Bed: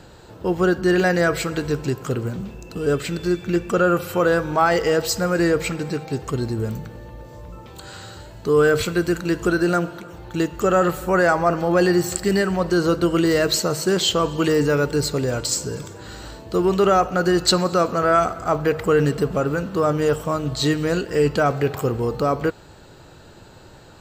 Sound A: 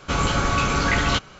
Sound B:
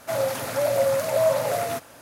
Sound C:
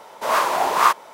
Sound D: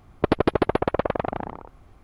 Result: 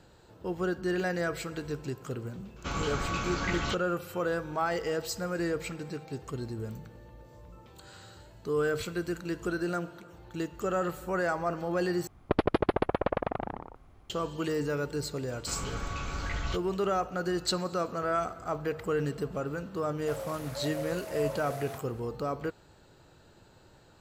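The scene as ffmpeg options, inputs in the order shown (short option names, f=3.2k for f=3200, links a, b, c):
-filter_complex "[1:a]asplit=2[a][b];[0:a]volume=-12.5dB[c];[b]asubboost=boost=8:cutoff=110[d];[c]asplit=2[e][f];[e]atrim=end=12.074[g];[4:a]atrim=end=2.03,asetpts=PTS-STARTPTS,volume=-5.5dB[h];[f]atrim=start=14.096[i];[a]atrim=end=1.39,asetpts=PTS-STARTPTS,volume=-11.5dB,afade=t=in:d=0.004:c=hsin,afade=t=out:st=1.386:d=0.004:c=hsin,adelay=2560[j];[d]atrim=end=1.39,asetpts=PTS-STARTPTS,volume=-16.5dB,afade=t=in:d=0.004:c=hsin,afade=t=out:st=1.386:d=0.004:c=hsin,adelay=15380[k];[2:a]atrim=end=2.01,asetpts=PTS-STARTPTS,volume=-15dB,afade=t=in:d=0.004:c=hsin,afade=t=out:st=2.006:d=0.004:c=hsin,adelay=19990[l];[g][h]acrossfade=d=0.004:c1=hsin:c2=hsin[m];[m][i]acrossfade=d=0.004:c1=hsin:c2=hsin[n];[n][j][k][l]amix=inputs=4:normalize=0"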